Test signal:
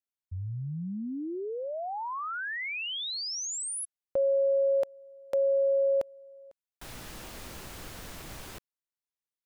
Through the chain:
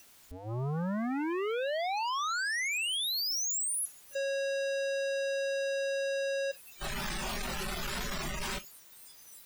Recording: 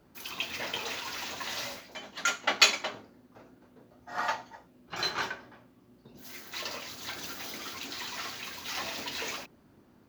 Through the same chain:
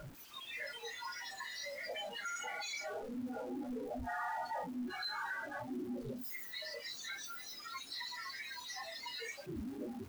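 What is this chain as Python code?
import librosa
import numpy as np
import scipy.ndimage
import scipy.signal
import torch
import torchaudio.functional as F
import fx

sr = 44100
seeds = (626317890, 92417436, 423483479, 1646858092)

y = np.sign(x) * np.sqrt(np.mean(np.square(x)))
y = fx.noise_reduce_blind(y, sr, reduce_db=22)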